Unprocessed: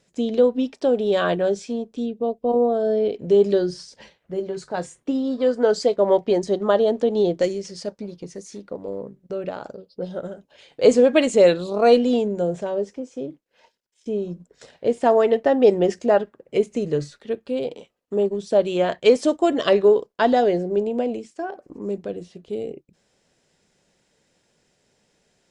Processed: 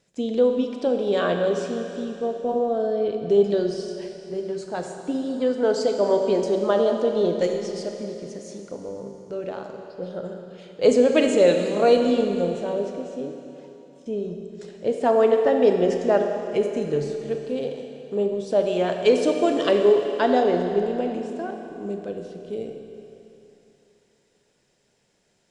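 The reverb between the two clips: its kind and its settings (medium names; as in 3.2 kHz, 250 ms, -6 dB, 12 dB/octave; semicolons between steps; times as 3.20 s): Schroeder reverb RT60 3.1 s, combs from 28 ms, DRR 4 dB; trim -3 dB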